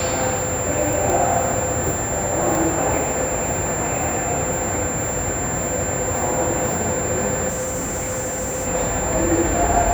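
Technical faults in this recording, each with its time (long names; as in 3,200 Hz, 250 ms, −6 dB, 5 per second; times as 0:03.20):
whistle 7,300 Hz −25 dBFS
0:07.48–0:08.68: clipping −21.5 dBFS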